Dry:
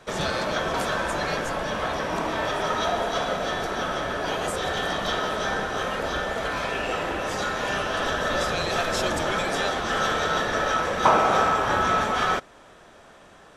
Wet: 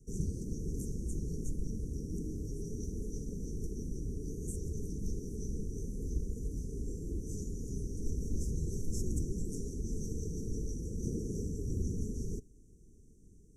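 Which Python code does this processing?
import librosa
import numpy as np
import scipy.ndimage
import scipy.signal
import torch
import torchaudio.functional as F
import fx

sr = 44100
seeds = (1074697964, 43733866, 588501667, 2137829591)

y = scipy.signal.sosfilt(scipy.signal.cheby1(5, 1.0, [440.0, 5900.0], 'bandstop', fs=sr, output='sos'), x)
y = fx.tone_stack(y, sr, knobs='10-0-1')
y = F.gain(torch.from_numpy(y), 11.5).numpy()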